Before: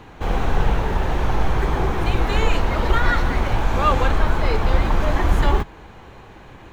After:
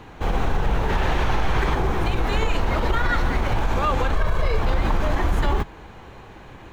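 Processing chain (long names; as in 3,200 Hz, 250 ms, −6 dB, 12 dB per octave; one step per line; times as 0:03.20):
0:04.15–0:04.59: comb filter 1.8 ms
brickwall limiter −12 dBFS, peak gain reduction 10.5 dB
0:00.89–0:01.75: parametric band 2,800 Hz +6 dB 2.7 octaves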